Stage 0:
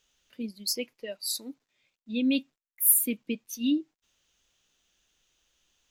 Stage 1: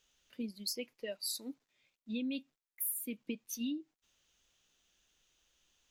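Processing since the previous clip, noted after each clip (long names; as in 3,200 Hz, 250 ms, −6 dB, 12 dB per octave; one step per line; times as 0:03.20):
downward compressor 10 to 1, threshold −32 dBFS, peak gain reduction 16.5 dB
level −2.5 dB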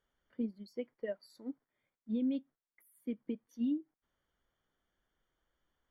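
brickwall limiter −30 dBFS, peak gain reduction 6 dB
Savitzky-Golay smoothing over 41 samples
expander for the loud parts 1.5 to 1, over −47 dBFS
level +5 dB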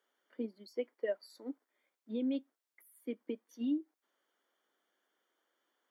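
high-pass filter 290 Hz 24 dB per octave
level +4 dB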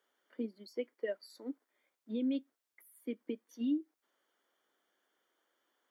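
dynamic equaliser 810 Hz, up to −7 dB, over −53 dBFS, Q 1.2
level +1.5 dB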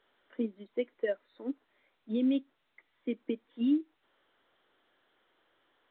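level +5.5 dB
mu-law 64 kbit/s 8,000 Hz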